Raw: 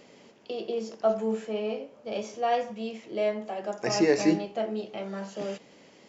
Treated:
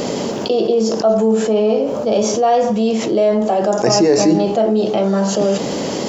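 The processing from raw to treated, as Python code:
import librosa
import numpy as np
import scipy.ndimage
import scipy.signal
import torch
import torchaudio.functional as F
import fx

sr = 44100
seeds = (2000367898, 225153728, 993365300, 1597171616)

y = fx.peak_eq(x, sr, hz=2200.0, db=-11.5, octaves=1.2)
y = fx.env_flatten(y, sr, amount_pct=70)
y = y * librosa.db_to_amplitude(8.0)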